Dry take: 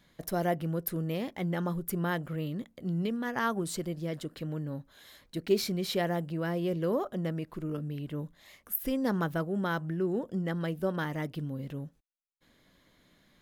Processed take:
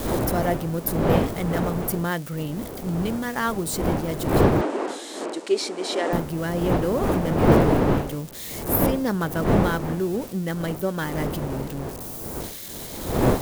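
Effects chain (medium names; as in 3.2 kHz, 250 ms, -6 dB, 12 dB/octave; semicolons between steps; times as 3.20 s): zero-crossing glitches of -32.5 dBFS; wind noise 480 Hz -30 dBFS; 4.61–6.13 s: elliptic band-pass 300–8500 Hz, stop band 40 dB; trim +5 dB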